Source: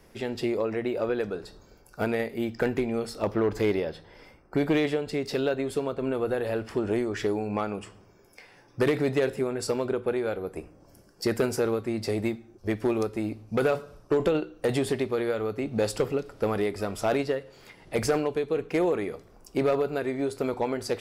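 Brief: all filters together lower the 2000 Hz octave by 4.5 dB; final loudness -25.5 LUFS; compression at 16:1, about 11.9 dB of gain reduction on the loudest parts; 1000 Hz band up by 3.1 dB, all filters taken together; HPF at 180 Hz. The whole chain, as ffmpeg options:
-af "highpass=180,equalizer=f=1k:t=o:g=6.5,equalizer=f=2k:t=o:g=-8.5,acompressor=threshold=-31dB:ratio=16,volume=11.5dB"

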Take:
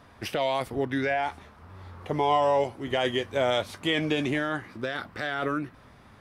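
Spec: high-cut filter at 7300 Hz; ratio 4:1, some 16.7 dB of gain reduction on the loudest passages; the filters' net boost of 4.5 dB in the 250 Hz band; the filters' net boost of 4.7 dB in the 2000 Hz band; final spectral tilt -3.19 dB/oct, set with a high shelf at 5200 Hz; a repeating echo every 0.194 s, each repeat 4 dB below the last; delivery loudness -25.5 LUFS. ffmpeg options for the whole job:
-af "lowpass=7.3k,equalizer=f=250:t=o:g=5.5,equalizer=f=2k:t=o:g=4.5,highshelf=f=5.2k:g=9,acompressor=threshold=-39dB:ratio=4,aecho=1:1:194|388|582|776|970|1164|1358|1552|1746:0.631|0.398|0.25|0.158|0.0994|0.0626|0.0394|0.0249|0.0157,volume=13dB"

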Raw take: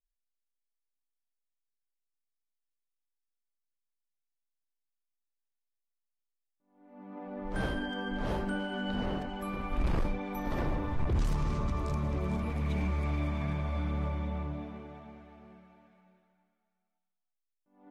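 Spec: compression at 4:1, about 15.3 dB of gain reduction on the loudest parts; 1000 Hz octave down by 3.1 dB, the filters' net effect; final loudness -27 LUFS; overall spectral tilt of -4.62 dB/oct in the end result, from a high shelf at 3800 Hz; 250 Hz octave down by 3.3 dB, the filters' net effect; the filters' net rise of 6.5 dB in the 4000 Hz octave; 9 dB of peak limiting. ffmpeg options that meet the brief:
-af "equalizer=f=250:t=o:g=-4.5,equalizer=f=1k:t=o:g=-4.5,highshelf=f=3.8k:g=8,equalizer=f=4k:t=o:g=5,acompressor=threshold=-45dB:ratio=4,volume=26dB,alimiter=limit=-18dB:level=0:latency=1"

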